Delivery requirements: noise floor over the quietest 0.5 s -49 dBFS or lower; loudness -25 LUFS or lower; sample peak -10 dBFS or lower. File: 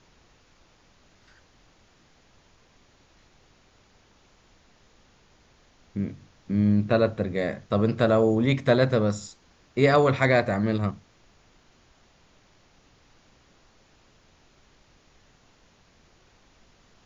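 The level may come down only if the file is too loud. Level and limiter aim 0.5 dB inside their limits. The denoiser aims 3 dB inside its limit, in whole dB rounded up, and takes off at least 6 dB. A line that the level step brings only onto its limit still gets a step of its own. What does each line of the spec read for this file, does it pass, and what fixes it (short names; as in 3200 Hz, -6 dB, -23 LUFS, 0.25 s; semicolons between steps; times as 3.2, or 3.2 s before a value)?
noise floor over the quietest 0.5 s -60 dBFS: OK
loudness -24.0 LUFS: fail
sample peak -6.0 dBFS: fail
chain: gain -1.5 dB; limiter -10.5 dBFS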